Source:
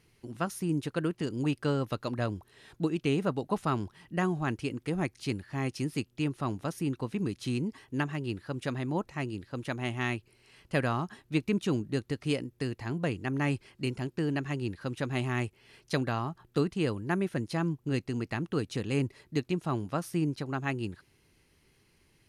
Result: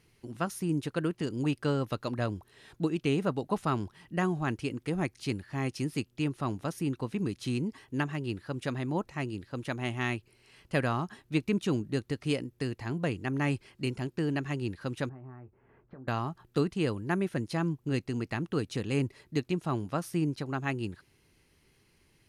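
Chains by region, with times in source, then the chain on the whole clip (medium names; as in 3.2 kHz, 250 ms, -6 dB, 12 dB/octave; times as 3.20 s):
15.09–16.08 s: low-pass 1.4 kHz 24 dB/octave + compression 16:1, threshold -44 dBFS + doubling 23 ms -11 dB
whole clip: none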